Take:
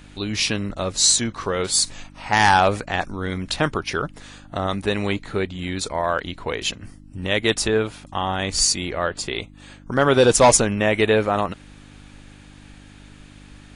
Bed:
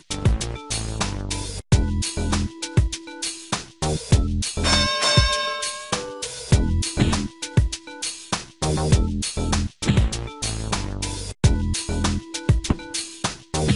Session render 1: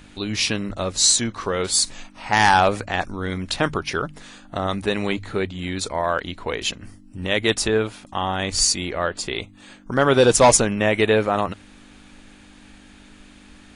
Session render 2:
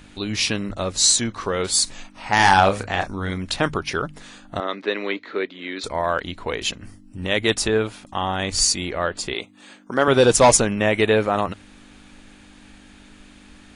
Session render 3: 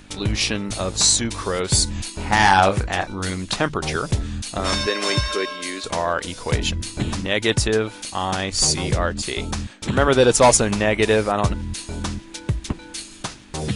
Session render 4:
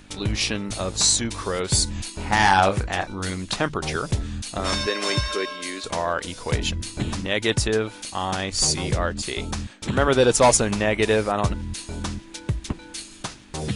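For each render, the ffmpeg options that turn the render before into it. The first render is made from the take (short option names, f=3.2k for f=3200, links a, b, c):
-af "bandreject=f=50:t=h:w=4,bandreject=f=100:t=h:w=4,bandreject=f=150:t=h:w=4"
-filter_complex "[0:a]asettb=1/sr,asplit=3[a][b][c];[a]atrim=end=2.354[d];[b]atrim=start=2.35:end=3.31,asetpts=PTS-STARTPTS,afade=t=in:d=0.004:c=qsin,afade=t=out:st=0.956:d=0.004:c=qsin,asplit=2[e][f];[f]adelay=31,volume=-7dB[g];[e][g]amix=inputs=2:normalize=0,atrim=end_sample=42336[h];[c]atrim=start=3.306[i];[d][h]acrossfade=d=0.004:c1=hsin:c2=qsin[j];[j][i]acrossfade=d=0.004:c1=qsin:c2=hsin,asettb=1/sr,asplit=3[k][l][m];[k]atrim=end=4.604[n];[l]atrim=start=4.6:end=5.84,asetpts=PTS-STARTPTS,afade=t=in:d=0.004:c=qsin,afade=t=out:st=1.236:d=0.004:c=qsin,highpass=f=280:w=0.5412,highpass=f=280:w=1.3066,equalizer=f=790:t=q:w=4:g=-8,equalizer=f=2k:t=q:w=4:g=3,equalizer=f=2.9k:t=q:w=4:g=-3,lowpass=f=4.5k:w=0.5412,lowpass=f=4.5k:w=1.3066[o];[m]atrim=start=5.836[p];[n][o]acrossfade=d=0.004:c1=hsin:c2=qsin[q];[q][p]acrossfade=d=0.004:c1=qsin:c2=hsin,asettb=1/sr,asplit=3[r][s][t];[r]atrim=end=9.344[u];[s]atrim=start=9.34:end=10.08,asetpts=PTS-STARTPTS,afade=t=in:d=0.004:c=qsin,afade=t=out:st=0.736:d=0.004:c=qsin,highpass=220[v];[t]atrim=start=10.076[w];[u][v]acrossfade=d=0.004:c1=hsin:c2=qsin[x];[x][w]acrossfade=d=0.004:c1=qsin:c2=hsin"
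-filter_complex "[1:a]volume=-5dB[a];[0:a][a]amix=inputs=2:normalize=0"
-af "volume=-2.5dB"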